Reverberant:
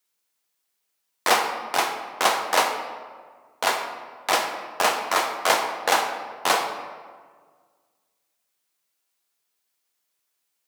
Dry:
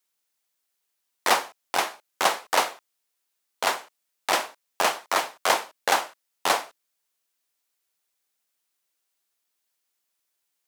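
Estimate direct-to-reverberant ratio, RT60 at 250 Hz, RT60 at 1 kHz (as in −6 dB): 3.5 dB, 1.8 s, 1.6 s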